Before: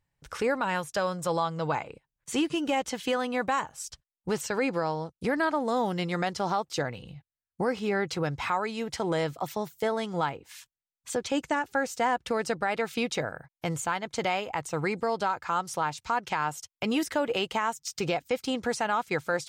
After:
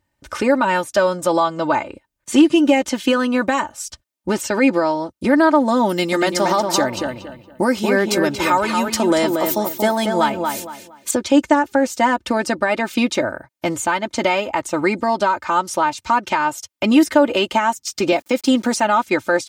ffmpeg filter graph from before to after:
-filter_complex "[0:a]asettb=1/sr,asplit=3[a][b][c];[a]atrim=end=5.894[d];[b]atrim=start=5.89:end=11.11,asetpts=PTS-STARTPTS,afade=t=in:d=0.004:c=qsin,afade=t=out:st=5.216:d=0.004:c=qsin,aemphasis=mode=production:type=50fm,asplit=2[e][f];[f]adelay=232,lowpass=f=2.9k:p=1,volume=-4.5dB,asplit=2[g][h];[h]adelay=232,lowpass=f=2.9k:p=1,volume=0.29,asplit=2[i][j];[j]adelay=232,lowpass=f=2.9k:p=1,volume=0.29,asplit=2[k][l];[l]adelay=232,lowpass=f=2.9k:p=1,volume=0.29[m];[e][g][i][k][m]amix=inputs=5:normalize=0,atrim=end_sample=230202[n];[c]atrim=start=11.106[o];[d][n]acrossfade=d=0.004:c1=hsin:c2=qsin[p];[p][o]acrossfade=d=0.004:c1=qsin:c2=hsin,asettb=1/sr,asplit=3[q][r][s];[q]atrim=end=18.124[t];[r]atrim=start=18.12:end=18.8,asetpts=PTS-STARTPTS,afade=t=in:d=0.004:c=qsin,afade=t=out:st=0.676:d=0.004:c=qsin,highpass=f=140:w=0.5412,highpass=f=140:w=1.3066,bass=f=250:g=2,treble=f=4k:g=4,aeval=exprs='val(0)*gte(abs(val(0)),0.00316)':c=same[u];[s]atrim=start=18.796[v];[t][u]acrossfade=d=0.004:c1=hsin:c2=qsin[w];[w][v]acrossfade=d=0.004:c1=qsin:c2=hsin,highpass=f=180:p=1,lowshelf=f=460:g=8,aecho=1:1:3.3:0.77,volume=7dB"

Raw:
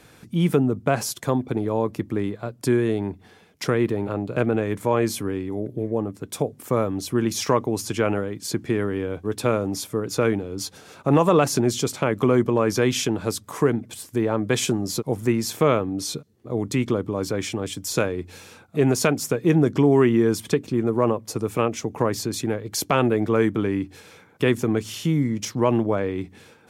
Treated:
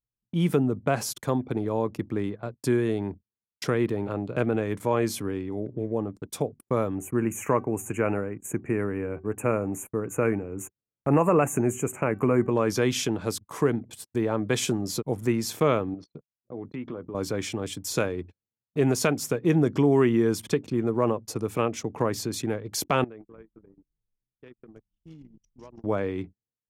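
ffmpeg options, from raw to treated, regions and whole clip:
-filter_complex "[0:a]asettb=1/sr,asplit=3[a][b][c];[a]atrim=end=6.954[d];[b]atrim=start=6.95:end=12.51,asetpts=PTS-STARTPTS,afade=t=in:d=0.004:c=qsin,afade=t=out:st=5.556:d=0.004:c=qsin,asuperstop=centerf=4300:order=12:qfactor=1.1,equalizer=f=5k:w=7.6:g=8,bandreject=f=380.6:t=h:w=4,bandreject=f=761.2:t=h:w=4,bandreject=f=1.1418k:t=h:w=4,bandreject=f=1.5224k:t=h:w=4,bandreject=f=1.903k:t=h:w=4,bandreject=f=2.2836k:t=h:w=4,bandreject=f=2.6642k:t=h:w=4,bandreject=f=3.0448k:t=h:w=4,bandreject=f=3.4254k:t=h:w=4,bandreject=f=3.806k:t=h:w=4,bandreject=f=4.1866k:t=h:w=4,bandreject=f=4.5672k:t=h:w=4,bandreject=f=4.9478k:t=h:w=4,bandreject=f=5.3284k:t=h:w=4,bandreject=f=5.709k:t=h:w=4,bandreject=f=6.0896k:t=h:w=4,bandreject=f=6.4702k:t=h:w=4[e];[c]atrim=start=12.506[f];[d][e]acrossfade=d=0.004:c1=hsin:c2=qsin[g];[g][f]acrossfade=d=0.004:c1=qsin:c2=hsin,asettb=1/sr,asplit=3[h][i][j];[h]atrim=end=15.944[k];[i]atrim=start=15.94:end=17.15,asetpts=PTS-STARTPTS,afade=t=in:d=0.004:c=qsin,afade=t=out:st=1.206:d=0.004:c=qsin,highpass=110,lowpass=2.4k,acompressor=threshold=-35dB:ratio=2:attack=3.2:release=140:knee=1:detection=peak,asplit=2[l][m];[m]adelay=12,volume=-9.5dB[n];[l][n]amix=inputs=2:normalize=0,atrim=end_sample=53361[o];[j]atrim=start=17.146[p];[k][o]acrossfade=d=0.004:c1=hsin:c2=qsin[q];[q][p]acrossfade=d=0.004:c1=qsin:c2=hsin,asettb=1/sr,asplit=3[r][s][t];[r]atrim=end=23.044[u];[s]atrim=start=23.04:end=25.84,asetpts=PTS-STARTPTS,afade=t=in:d=0.004:c=qsin,afade=t=out:st=2.796:d=0.004:c=qsin,lowshelf=f=190:g=-5,acompressor=threshold=-38dB:ratio=5:attack=3.2:release=140:knee=1:detection=peak,asplit=9[v][w][x][y][z][aa][ab][ac][ad];[w]adelay=167,afreqshift=-140,volume=-9.5dB[ae];[x]adelay=334,afreqshift=-280,volume=-13.5dB[af];[y]adelay=501,afreqshift=-420,volume=-17.5dB[ag];[z]adelay=668,afreqshift=-560,volume=-21.5dB[ah];[aa]adelay=835,afreqshift=-700,volume=-25.6dB[ai];[ab]adelay=1002,afreqshift=-840,volume=-29.6dB[aj];[ac]adelay=1169,afreqshift=-980,volume=-33.6dB[ak];[ad]adelay=1336,afreqshift=-1120,volume=-37.6dB[al];[v][ae][af][ag][ah][ai][aj][ak][al]amix=inputs=9:normalize=0,atrim=end_sample=123480[am];[t]atrim=start=25.836[an];[u][am]acrossfade=d=0.004:c1=hsin:c2=qsin[ao];[ao][an]acrossfade=d=0.004:c1=qsin:c2=hsin,agate=range=-22dB:threshold=-37dB:ratio=16:detection=peak,anlmdn=0.0631,volume=-3.5dB"

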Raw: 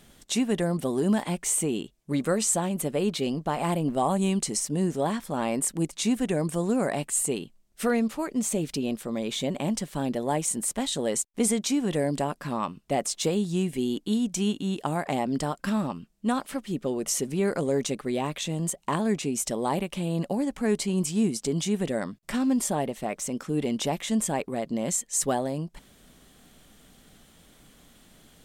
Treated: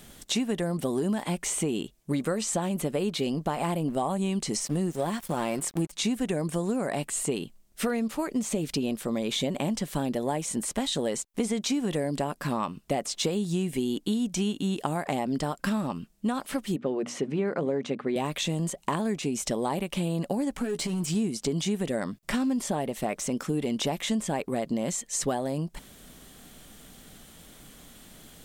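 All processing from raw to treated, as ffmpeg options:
-filter_complex "[0:a]asettb=1/sr,asplit=3[a][b][c];[a]atrim=end=4.674[d];[b]atrim=start=4.67:end=5.92,asetpts=PTS-STARTPTS,afade=t=in:d=0.004:c=qsin,afade=t=out:st=1.246:d=0.004:c=qsin,highshelf=f=11k:g=8.5,aecho=1:1:5.7:0.36,atrim=end_sample=55125,aeval=exprs='sgn(val(0))*max(abs(val(0))-0.00631,0)':c=same[e];[c]atrim=start=5.916[f];[d][e]acrossfade=d=0.004:c1=hsin:c2=qsin[g];[g][f]acrossfade=d=0.004:c1=qsin:c2=hsin,asettb=1/sr,asplit=3[h][i][j];[h]atrim=end=16.764[k];[i]atrim=start=16.76:end=18.16,asetpts=PTS-STARTPTS,afade=t=in:d=0.004:c=qsin,afade=t=out:st=1.396:d=0.004:c=qsin,highpass=140,lowpass=2.5k,bandreject=f=60:t=h:w=6,bandreject=f=120:t=h:w=6,bandreject=f=180:t=h:w=6,bandreject=f=240:t=h:w=6,bandreject=f=300:t=h:w=6[l];[j]atrim=start=18.156[m];[k][l]acrossfade=d=0.004:c1=hsin:c2=qsin[n];[n][m]acrossfade=d=0.004:c1=qsin:c2=hsin,asettb=1/sr,asplit=3[o][p][q];[o]atrim=end=20.604[r];[p]atrim=start=20.6:end=21.15,asetpts=PTS-STARTPTS,afade=t=in:d=0.004:c=qsin,afade=t=out:st=0.546:d=0.004:c=qsin,acompressor=threshold=-28dB:ratio=16:attack=3.2:release=140:knee=1:detection=peak,asoftclip=type=hard:threshold=-28dB,asplit=2[s][t];[t]adelay=12,volume=-7dB[u];[s][u]amix=inputs=2:normalize=0,atrim=end_sample=24255[v];[q]atrim=start=21.146[w];[r][v]acrossfade=d=0.004:c1=hsin:c2=qsin[x];[x][w]acrossfade=d=0.004:c1=qsin:c2=hsin,acrossover=split=5600[y][z];[z]acompressor=threshold=-43dB:ratio=4:attack=1:release=60[aa];[y][aa]amix=inputs=2:normalize=0,highshelf=f=9.2k:g=6,acompressor=threshold=-29dB:ratio=6,volume=4.5dB"

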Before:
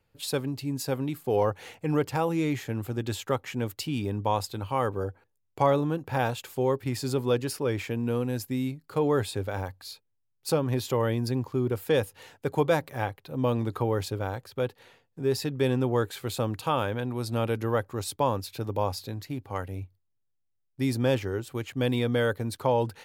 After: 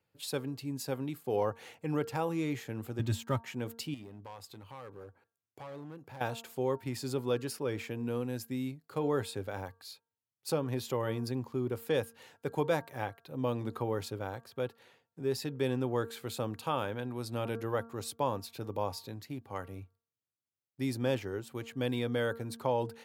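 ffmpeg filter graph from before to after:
-filter_complex "[0:a]asettb=1/sr,asplit=3[a][b][c];[a]atrim=end=2.994[d];[b]atrim=start=2.99:end=3.43,asetpts=PTS-STARTPTS,afade=t=in:d=0.004:c=qsin,afade=t=out:st=0.436:d=0.004:c=qsin,lowshelf=f=220:t=q:w=1.5:g=11.5,aecho=1:1:3.2:0.6,atrim=end_sample=19404,aeval=exprs='sgn(val(0))*max(abs(val(0))-0.00335,0)':c=same[e];[c]atrim=start=3.426[f];[d][e]acrossfade=d=0.004:c1=hsin:c2=qsin[g];[g][f]acrossfade=d=0.004:c1=qsin:c2=hsin,asettb=1/sr,asplit=3[h][i][j];[h]atrim=end=3.944[k];[i]atrim=start=3.94:end=6.21,asetpts=PTS-STARTPTS,afade=t=in:d=0.004:c=qsin,afade=t=out:st=2.266:d=0.004:c=qsin,acompressor=threshold=-43dB:ratio=2:attack=3.2:release=140:knee=1:detection=peak,asoftclip=type=hard:threshold=-35dB[l];[j]atrim=start=6.206[m];[k][l]acrossfade=d=0.004:c1=hsin:c2=qsin[n];[n][m]acrossfade=d=0.004:c1=qsin:c2=hsin,highpass=110,bandreject=f=229.6:t=h:w=4,bandreject=f=459.2:t=h:w=4,bandreject=f=688.8:t=h:w=4,bandreject=f=918.4:t=h:w=4,bandreject=f=1.148k:t=h:w=4,bandreject=f=1.3776k:t=h:w=4,bandreject=f=1.6072k:t=h:w=4,volume=-6dB"

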